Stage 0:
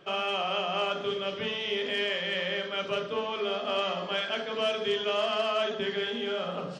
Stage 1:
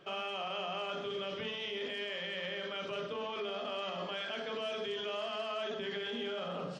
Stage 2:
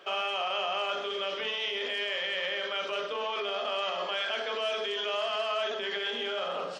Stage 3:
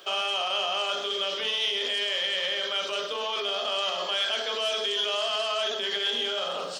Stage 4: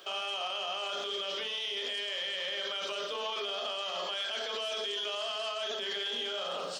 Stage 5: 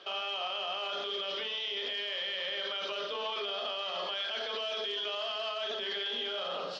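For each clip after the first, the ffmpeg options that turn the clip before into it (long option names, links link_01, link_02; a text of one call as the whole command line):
ffmpeg -i in.wav -af "alimiter=level_in=3dB:limit=-24dB:level=0:latency=1:release=21,volume=-3dB,volume=-3.5dB" out.wav
ffmpeg -i in.wav -af "highpass=500,volume=8dB" out.wav
ffmpeg -i in.wav -af "aexciter=amount=1.7:drive=9.5:freq=3300,volume=1dB" out.wav
ffmpeg -i in.wav -af "alimiter=limit=-24dB:level=0:latency=1:release=19,volume=-3dB" out.wav
ffmpeg -i in.wav -af "lowpass=frequency=4800:width=0.5412,lowpass=frequency=4800:width=1.3066" out.wav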